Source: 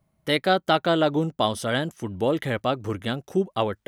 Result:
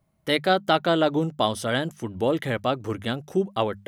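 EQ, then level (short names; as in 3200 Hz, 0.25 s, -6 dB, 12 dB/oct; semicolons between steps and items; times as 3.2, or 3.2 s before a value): notches 50/100/150/200 Hz; 0.0 dB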